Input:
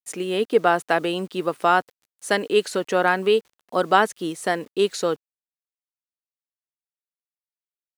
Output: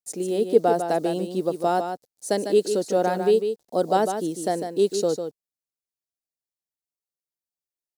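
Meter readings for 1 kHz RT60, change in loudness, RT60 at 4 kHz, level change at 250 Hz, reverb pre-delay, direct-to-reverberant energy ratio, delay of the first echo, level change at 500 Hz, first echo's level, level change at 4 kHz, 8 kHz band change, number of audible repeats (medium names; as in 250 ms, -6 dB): no reverb, -1.5 dB, no reverb, +0.5 dB, no reverb, no reverb, 150 ms, +0.5 dB, -7.5 dB, -7.0 dB, +0.5 dB, 1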